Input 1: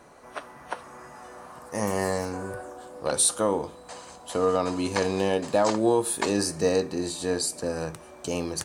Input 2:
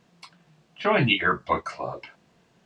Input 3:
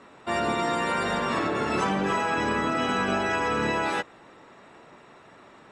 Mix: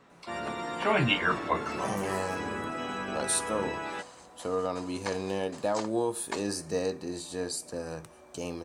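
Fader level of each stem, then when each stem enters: −7.0, −4.5, −9.5 decibels; 0.10, 0.00, 0.00 seconds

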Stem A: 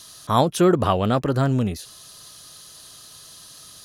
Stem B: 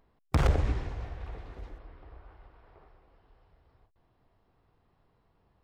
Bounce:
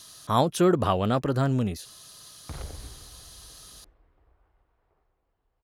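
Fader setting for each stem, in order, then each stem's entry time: −4.0, −14.0 decibels; 0.00, 2.15 seconds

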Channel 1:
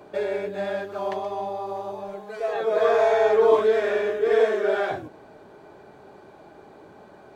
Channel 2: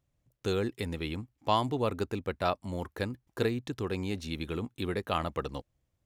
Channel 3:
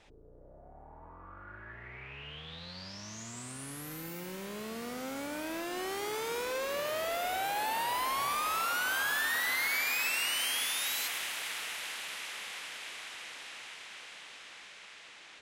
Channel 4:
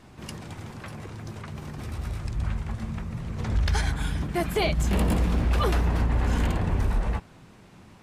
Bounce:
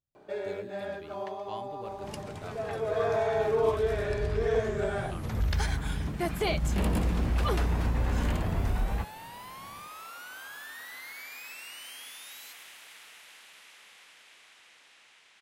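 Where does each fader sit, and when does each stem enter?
−8.5, −16.0, −12.5, −4.0 decibels; 0.15, 0.00, 1.45, 1.85 seconds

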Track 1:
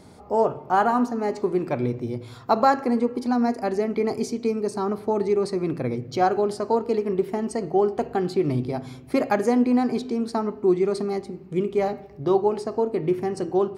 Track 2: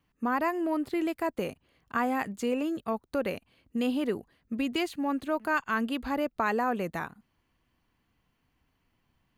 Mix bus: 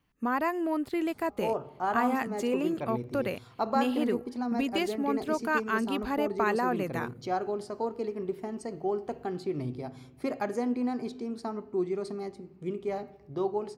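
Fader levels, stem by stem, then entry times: −10.0, −0.5 decibels; 1.10, 0.00 seconds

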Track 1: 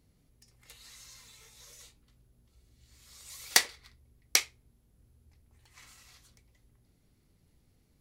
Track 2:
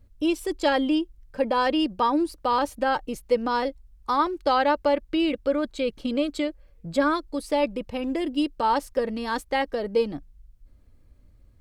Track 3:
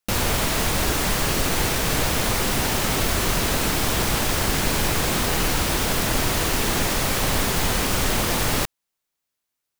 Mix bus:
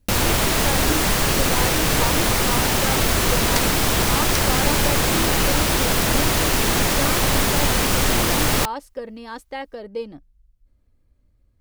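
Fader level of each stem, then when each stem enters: −4.5, −6.5, +3.0 decibels; 0.00, 0.00, 0.00 seconds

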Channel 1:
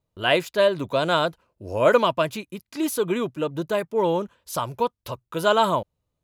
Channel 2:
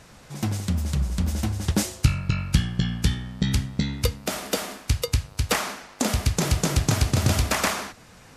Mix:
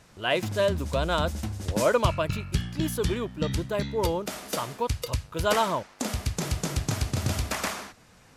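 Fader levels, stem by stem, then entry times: −5.5, −6.5 decibels; 0.00, 0.00 seconds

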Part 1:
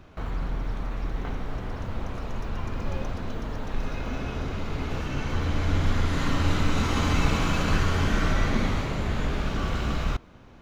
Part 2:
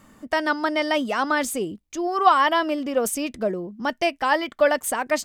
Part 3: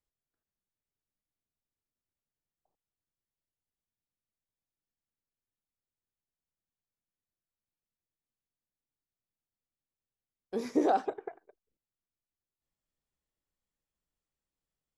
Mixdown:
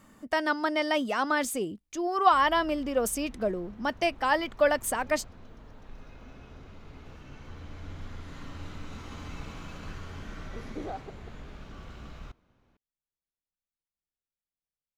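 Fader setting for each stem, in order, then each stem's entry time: −17.5, −4.5, −11.5 decibels; 2.15, 0.00, 0.00 seconds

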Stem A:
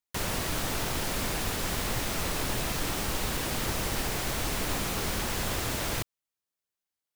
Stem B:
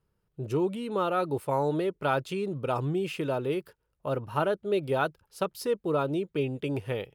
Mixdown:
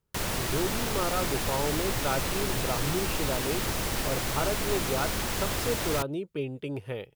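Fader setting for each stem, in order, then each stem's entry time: +0.5, −3.5 decibels; 0.00, 0.00 seconds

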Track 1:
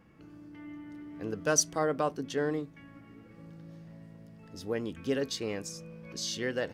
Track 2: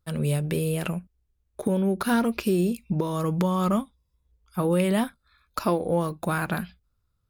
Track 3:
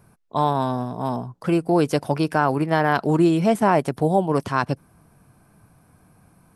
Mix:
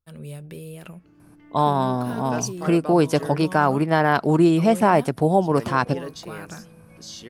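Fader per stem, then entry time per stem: −3.5, −11.5, +1.0 decibels; 0.85, 0.00, 1.20 seconds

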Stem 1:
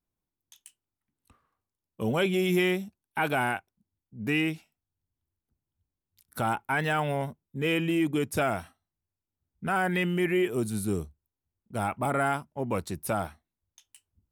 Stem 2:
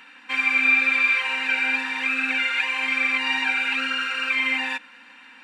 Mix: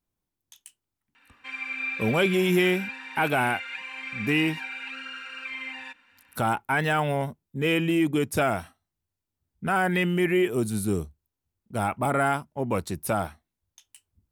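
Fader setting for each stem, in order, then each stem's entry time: +3.0, −13.0 decibels; 0.00, 1.15 seconds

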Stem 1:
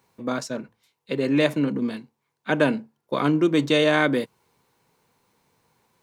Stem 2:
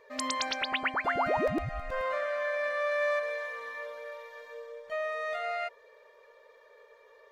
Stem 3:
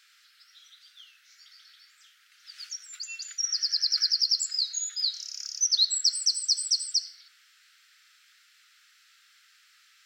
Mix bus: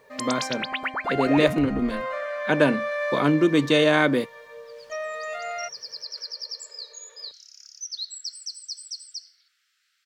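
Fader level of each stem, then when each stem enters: +0.5, +1.5, −10.5 decibels; 0.00, 0.00, 2.20 seconds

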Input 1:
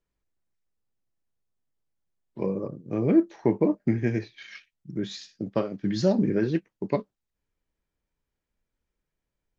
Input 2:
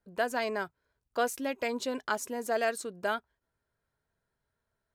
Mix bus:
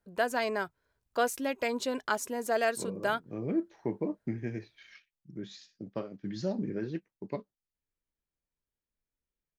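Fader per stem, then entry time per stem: −10.5, +1.0 decibels; 0.40, 0.00 seconds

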